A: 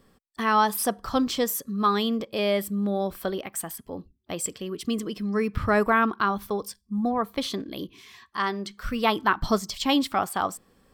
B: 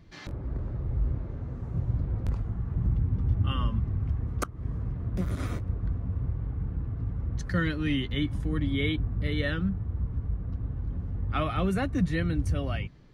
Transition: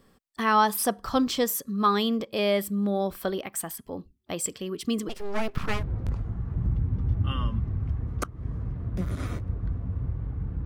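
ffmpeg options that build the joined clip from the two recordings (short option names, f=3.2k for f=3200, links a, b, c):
-filter_complex "[0:a]asplit=3[a][b][c];[a]afade=t=out:st=5.08:d=0.02[d];[b]aeval=exprs='abs(val(0))':c=same,afade=t=in:st=5.08:d=0.02,afade=t=out:st=5.85:d=0.02[e];[c]afade=t=in:st=5.85:d=0.02[f];[d][e][f]amix=inputs=3:normalize=0,apad=whole_dur=10.65,atrim=end=10.65,atrim=end=5.85,asetpts=PTS-STARTPTS[g];[1:a]atrim=start=1.85:end=6.85,asetpts=PTS-STARTPTS[h];[g][h]acrossfade=d=0.2:c1=tri:c2=tri"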